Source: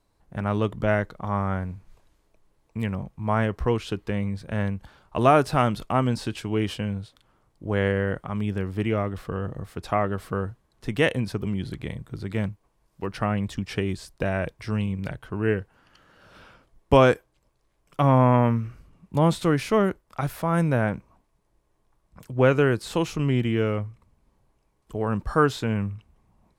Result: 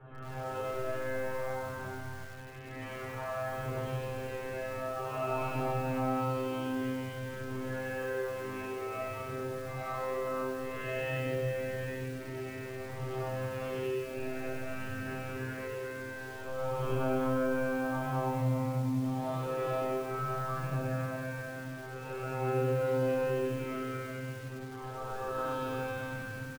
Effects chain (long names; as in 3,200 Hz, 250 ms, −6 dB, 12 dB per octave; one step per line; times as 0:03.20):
peak hold with a rise ahead of every peak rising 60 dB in 1.57 s
parametric band 180 Hz −2.5 dB 1.1 octaves
slap from a distant wall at 59 metres, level −10 dB
convolution reverb RT60 2.4 s, pre-delay 9 ms, DRR −7 dB
phase shifter 0.53 Hz, delay 3.4 ms, feedback 42%
low-pass filter 3,100 Hz 24 dB per octave
mains-hum notches 50/100/150/200/250/300/350 Hz
tuned comb filter 130 Hz, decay 1.3 s, harmonics all, mix 100%
0:23.64–0:25.03: low-shelf EQ 130 Hz −9.5 dB
downward compressor 2 to 1, threshold −39 dBFS, peak gain reduction 14 dB
feedback echo at a low word length 96 ms, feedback 55%, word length 8 bits, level −5 dB